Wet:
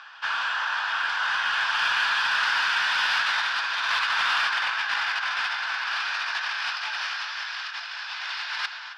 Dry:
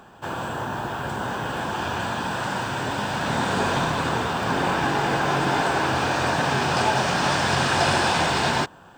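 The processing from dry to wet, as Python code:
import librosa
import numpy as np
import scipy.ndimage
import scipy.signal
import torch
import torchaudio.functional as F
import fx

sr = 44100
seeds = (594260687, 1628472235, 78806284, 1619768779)

p1 = scipy.signal.sosfilt(scipy.signal.butter(4, 1300.0, 'highpass', fs=sr, output='sos'), x)
p2 = p1 + fx.echo_single(p1, sr, ms=282, db=-22.5, dry=0)
p3 = fx.over_compress(p2, sr, threshold_db=-32.0, ratio=-0.5)
p4 = scipy.signal.sosfilt(scipy.signal.cheby1(4, 1.0, 5200.0, 'lowpass', fs=sr, output='sos'), p3)
p5 = 10.0 ** (-30.0 / 20.0) * np.tanh(p4 / 10.0 ** (-30.0 / 20.0))
p6 = p4 + (p5 * librosa.db_to_amplitude(-4.0))
y = p6 * librosa.db_to_amplitude(3.5)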